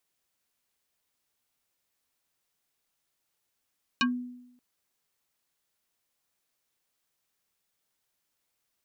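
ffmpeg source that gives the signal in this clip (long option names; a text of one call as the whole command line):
ffmpeg -f lavfi -i "aevalsrc='0.1*pow(10,-3*t/0.85)*sin(2*PI*247*t+3.7*pow(10,-3*t/0.13)*sin(2*PI*5.48*247*t))':duration=0.58:sample_rate=44100" out.wav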